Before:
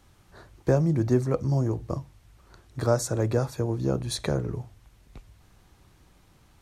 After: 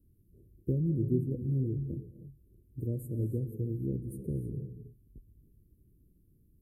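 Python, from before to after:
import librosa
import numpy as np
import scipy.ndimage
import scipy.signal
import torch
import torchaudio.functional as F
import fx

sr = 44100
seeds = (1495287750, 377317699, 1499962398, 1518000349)

y = scipy.signal.sosfilt(scipy.signal.cheby2(4, 50, [870.0, 6000.0], 'bandstop', fs=sr, output='sos'), x)
y = fx.band_shelf(y, sr, hz=1100.0, db=-9.5, octaves=1.7)
y = fx.rev_gated(y, sr, seeds[0], gate_ms=340, shape='rising', drr_db=9.5)
y = F.gain(torch.from_numpy(y), -6.0).numpy()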